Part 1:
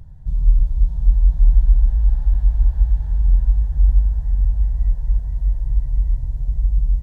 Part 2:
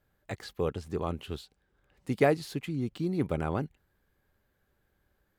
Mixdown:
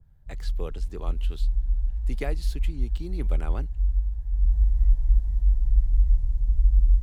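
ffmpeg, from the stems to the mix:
-filter_complex "[0:a]volume=-9.5dB,afade=t=in:st=4.28:d=0.28:silence=0.421697[a];[1:a]volume=-6dB[b];[a][b]amix=inputs=2:normalize=0,asubboost=boost=3.5:cutoff=66,acrossover=split=140[c][d];[d]acompressor=threshold=-29dB:ratio=4[e];[c][e]amix=inputs=2:normalize=0,adynamicequalizer=threshold=0.00178:dfrequency=2000:dqfactor=0.7:tfrequency=2000:tqfactor=0.7:attack=5:release=100:ratio=0.375:range=3:mode=boostabove:tftype=highshelf"

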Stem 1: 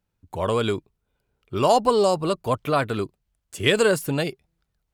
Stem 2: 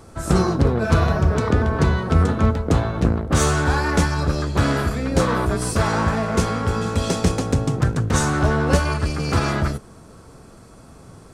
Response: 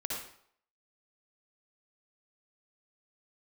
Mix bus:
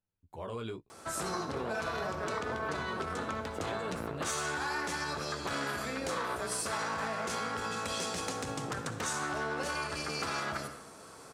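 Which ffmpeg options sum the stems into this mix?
-filter_complex "[0:a]flanger=delay=8.5:depth=9.7:regen=-19:speed=0.78:shape=triangular,highshelf=f=5.5k:g=-6,alimiter=limit=-19dB:level=0:latency=1:release=19,volume=-10dB[a];[1:a]alimiter=limit=-14dB:level=0:latency=1:release=16,highpass=f=910:p=1,adelay=900,volume=-1.5dB,asplit=2[b][c];[c]volume=-9dB[d];[2:a]atrim=start_sample=2205[e];[d][e]afir=irnorm=-1:irlink=0[f];[a][b][f]amix=inputs=3:normalize=0,acompressor=threshold=-35dB:ratio=2.5"

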